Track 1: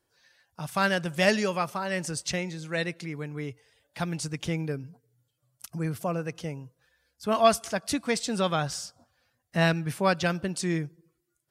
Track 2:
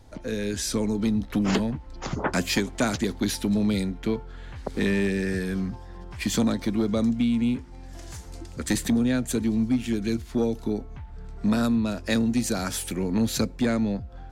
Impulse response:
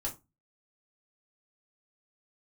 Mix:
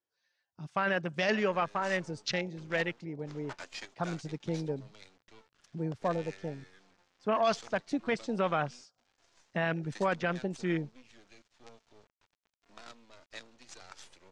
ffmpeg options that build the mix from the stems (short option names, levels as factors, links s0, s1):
-filter_complex "[0:a]highpass=f=290:p=1,afwtdn=0.0178,volume=1.06[s0];[1:a]highpass=640,aphaser=in_gain=1:out_gain=1:delay=3.4:decay=0.34:speed=0.21:type=triangular,acrusher=bits=5:dc=4:mix=0:aa=0.000001,adelay=1250,volume=0.15[s1];[s0][s1]amix=inputs=2:normalize=0,lowpass=f=6800:w=0.5412,lowpass=f=6800:w=1.3066,alimiter=limit=0.119:level=0:latency=1:release=12"